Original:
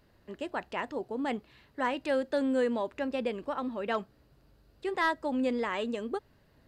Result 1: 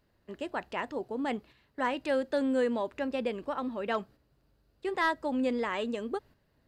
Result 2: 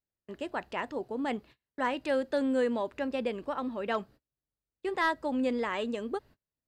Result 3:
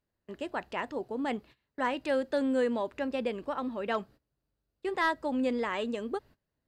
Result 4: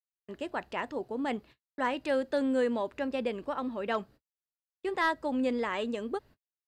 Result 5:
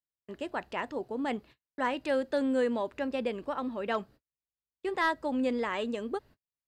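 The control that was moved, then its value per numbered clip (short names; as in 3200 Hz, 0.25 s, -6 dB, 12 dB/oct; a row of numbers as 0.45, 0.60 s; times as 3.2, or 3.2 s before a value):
gate, range: -7, -33, -21, -58, -45 dB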